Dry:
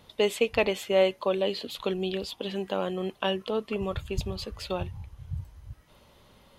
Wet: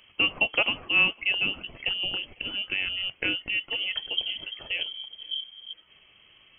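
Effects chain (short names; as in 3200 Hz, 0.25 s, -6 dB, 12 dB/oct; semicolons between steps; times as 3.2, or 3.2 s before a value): thinning echo 0.5 s, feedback 60%, high-pass 1100 Hz, level -23 dB; inverted band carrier 3200 Hz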